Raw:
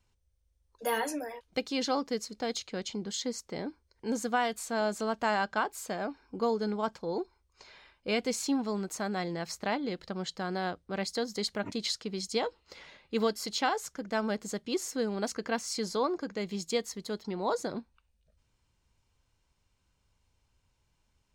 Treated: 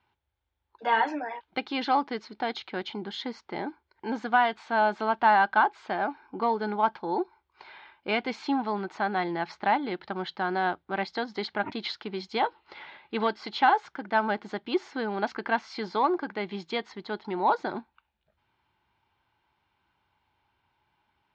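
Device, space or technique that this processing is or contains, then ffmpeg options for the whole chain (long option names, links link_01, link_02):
overdrive pedal into a guitar cabinet: -filter_complex "[0:a]asplit=2[link_01][link_02];[link_02]highpass=frequency=720:poles=1,volume=8dB,asoftclip=type=tanh:threshold=-15.5dB[link_03];[link_01][link_03]amix=inputs=2:normalize=0,lowpass=frequency=1800:poles=1,volume=-6dB,highpass=81,equalizer=frequency=350:width_type=q:width=4:gain=6,equalizer=frequency=500:width_type=q:width=4:gain=-8,equalizer=frequency=850:width_type=q:width=4:gain=10,equalizer=frequency=1500:width_type=q:width=4:gain=5,equalizer=frequency=2200:width_type=q:width=4:gain=3,equalizer=frequency=3400:width_type=q:width=4:gain=4,lowpass=frequency=4300:width=0.5412,lowpass=frequency=4300:width=1.3066,volume=2.5dB"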